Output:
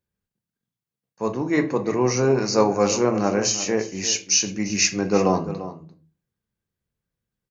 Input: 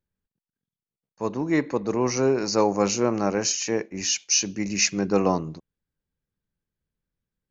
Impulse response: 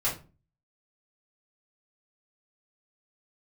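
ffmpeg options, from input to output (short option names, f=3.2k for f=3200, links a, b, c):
-filter_complex "[0:a]highpass=45,asplit=2[a][b];[b]adelay=344,volume=-13dB,highshelf=f=4k:g=-7.74[c];[a][c]amix=inputs=2:normalize=0,asplit=2[d][e];[1:a]atrim=start_sample=2205[f];[e][f]afir=irnorm=-1:irlink=0,volume=-12dB[g];[d][g]amix=inputs=2:normalize=0"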